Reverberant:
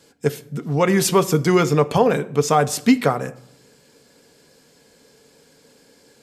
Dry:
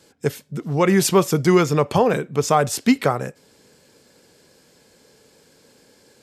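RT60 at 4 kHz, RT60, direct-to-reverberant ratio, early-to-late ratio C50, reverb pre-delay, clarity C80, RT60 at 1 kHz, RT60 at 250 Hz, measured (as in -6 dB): 0.50 s, 0.75 s, 9.5 dB, 19.5 dB, 4 ms, 22.5 dB, 0.75 s, 0.95 s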